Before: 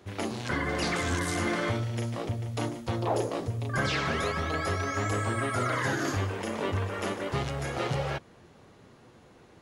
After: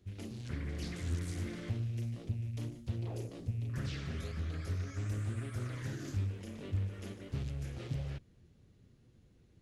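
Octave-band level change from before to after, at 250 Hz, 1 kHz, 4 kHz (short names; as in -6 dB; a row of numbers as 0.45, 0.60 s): -10.0, -24.0, -15.0 dB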